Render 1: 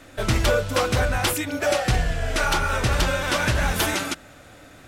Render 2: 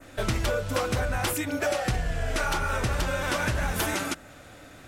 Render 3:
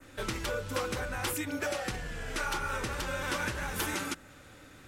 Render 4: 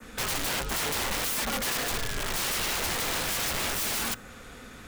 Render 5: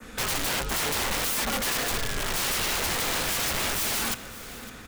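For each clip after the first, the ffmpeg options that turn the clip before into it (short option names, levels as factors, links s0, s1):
-af "adynamicequalizer=threshold=0.0112:dfrequency=3700:dqfactor=0.95:tfrequency=3700:tqfactor=0.95:attack=5:release=100:ratio=0.375:range=2:mode=cutabove:tftype=bell,acompressor=threshold=0.0794:ratio=6,volume=0.891"
-filter_complex "[0:a]equalizer=f=670:w=6.7:g=-13,acrossover=split=240[s0][s1];[s0]asoftclip=type=tanh:threshold=0.0224[s2];[s2][s1]amix=inputs=2:normalize=0,volume=0.596"
-af "aeval=exprs='(mod(39.8*val(0)+1,2)-1)/39.8':c=same,afreqshift=-51,volume=2.37"
-af "aecho=1:1:558|1116|1674:0.158|0.0539|0.0183,volume=1.26"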